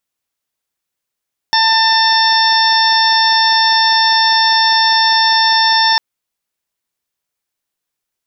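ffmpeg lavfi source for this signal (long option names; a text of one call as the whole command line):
ffmpeg -f lavfi -i "aevalsrc='0.224*sin(2*PI*895*t)+0.158*sin(2*PI*1790*t)+0.0316*sin(2*PI*2685*t)+0.126*sin(2*PI*3580*t)+0.075*sin(2*PI*4475*t)+0.211*sin(2*PI*5370*t)':duration=4.45:sample_rate=44100" out.wav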